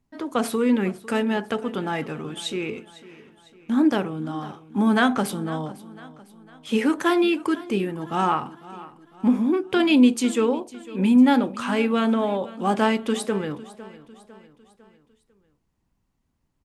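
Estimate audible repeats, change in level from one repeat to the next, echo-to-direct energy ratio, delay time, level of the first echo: 3, -6.5 dB, -17.5 dB, 0.502 s, -18.5 dB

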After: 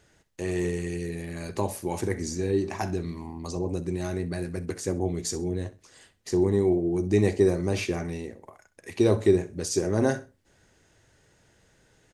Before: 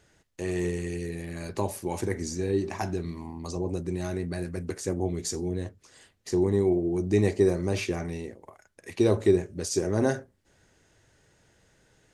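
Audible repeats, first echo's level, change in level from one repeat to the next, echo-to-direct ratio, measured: 2, -17.5 dB, -11.5 dB, -17.0 dB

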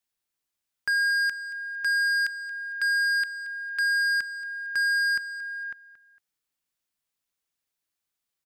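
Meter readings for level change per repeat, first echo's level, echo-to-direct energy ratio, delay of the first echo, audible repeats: -9.5 dB, -16.0 dB, -15.5 dB, 0.228 s, 2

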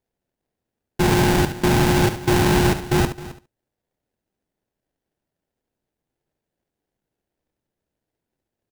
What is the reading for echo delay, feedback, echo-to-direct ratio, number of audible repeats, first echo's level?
71 ms, no steady repeat, -9.5 dB, 4, -10.5 dB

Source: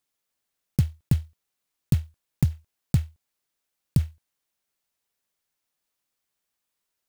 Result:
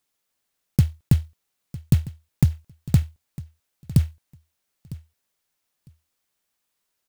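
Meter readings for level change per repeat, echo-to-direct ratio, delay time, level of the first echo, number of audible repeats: -16.0 dB, -18.0 dB, 0.954 s, -18.0 dB, 2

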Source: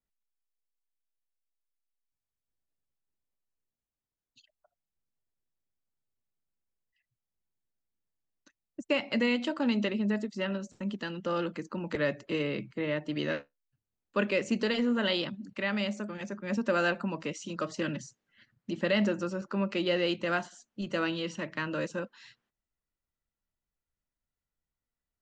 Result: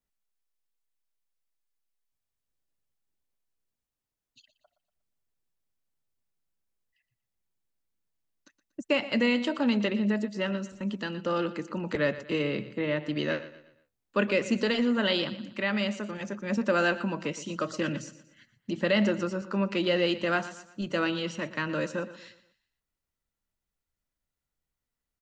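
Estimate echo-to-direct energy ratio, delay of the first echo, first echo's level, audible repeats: -14.0 dB, 0.119 s, -15.0 dB, 3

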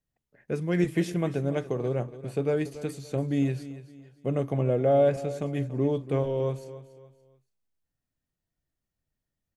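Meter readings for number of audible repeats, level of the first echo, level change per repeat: 3, -15.0 dB, -9.0 dB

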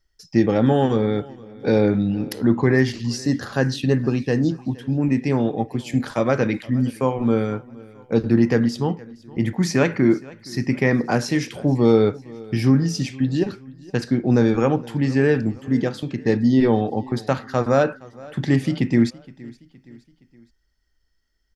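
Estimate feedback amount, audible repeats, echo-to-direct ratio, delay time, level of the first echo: 48%, 3, -21.0 dB, 0.468 s, -22.0 dB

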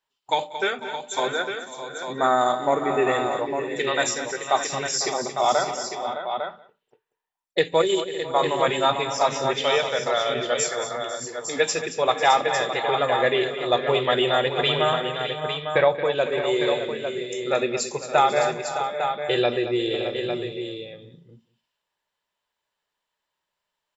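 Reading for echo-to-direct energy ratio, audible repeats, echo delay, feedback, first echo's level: -4.0 dB, 9, 0.186 s, no steady repeat, -22.0 dB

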